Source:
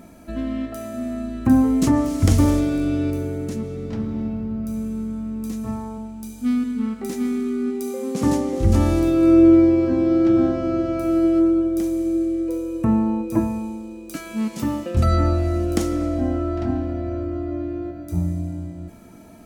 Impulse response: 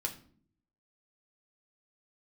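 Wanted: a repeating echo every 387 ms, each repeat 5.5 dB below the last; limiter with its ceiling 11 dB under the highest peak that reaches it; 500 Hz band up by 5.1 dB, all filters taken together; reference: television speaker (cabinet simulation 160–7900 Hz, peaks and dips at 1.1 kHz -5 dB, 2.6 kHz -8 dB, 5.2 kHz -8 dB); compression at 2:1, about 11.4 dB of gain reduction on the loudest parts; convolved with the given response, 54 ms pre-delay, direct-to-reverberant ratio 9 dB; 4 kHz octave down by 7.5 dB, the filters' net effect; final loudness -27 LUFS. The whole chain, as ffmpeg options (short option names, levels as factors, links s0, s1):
-filter_complex "[0:a]equalizer=f=500:t=o:g=8.5,equalizer=f=4000:t=o:g=-5,acompressor=threshold=0.0447:ratio=2,alimiter=limit=0.075:level=0:latency=1,aecho=1:1:387|774|1161|1548|1935|2322|2709:0.531|0.281|0.149|0.079|0.0419|0.0222|0.0118,asplit=2[s0][s1];[1:a]atrim=start_sample=2205,adelay=54[s2];[s1][s2]afir=irnorm=-1:irlink=0,volume=0.299[s3];[s0][s3]amix=inputs=2:normalize=0,highpass=f=160:w=0.5412,highpass=f=160:w=1.3066,equalizer=f=1100:t=q:w=4:g=-5,equalizer=f=2600:t=q:w=4:g=-8,equalizer=f=5200:t=q:w=4:g=-8,lowpass=f=7900:w=0.5412,lowpass=f=7900:w=1.3066,volume=1.19"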